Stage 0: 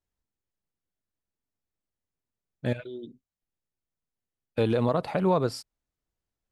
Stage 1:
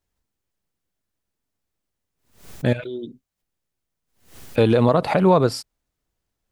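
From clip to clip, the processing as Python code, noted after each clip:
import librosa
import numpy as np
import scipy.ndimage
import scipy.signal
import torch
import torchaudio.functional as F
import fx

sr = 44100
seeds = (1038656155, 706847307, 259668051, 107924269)

y = fx.pre_swell(x, sr, db_per_s=120.0)
y = y * 10.0 ** (8.0 / 20.0)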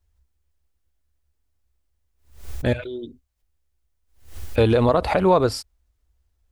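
y = fx.low_shelf_res(x, sr, hz=100.0, db=12.0, q=3.0)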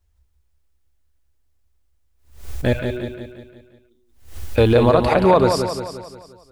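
y = fx.echo_feedback(x, sr, ms=176, feedback_pct=50, wet_db=-6.5)
y = y * 10.0 ** (2.5 / 20.0)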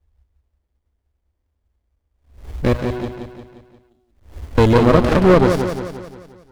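y = fx.running_max(x, sr, window=33)
y = y * 10.0 ** (3.0 / 20.0)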